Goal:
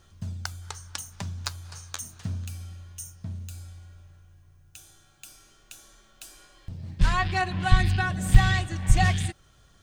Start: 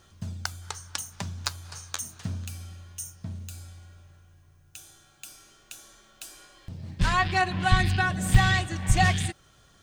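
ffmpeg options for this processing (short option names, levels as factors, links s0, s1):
-af "lowshelf=f=81:g=9.5,volume=0.75"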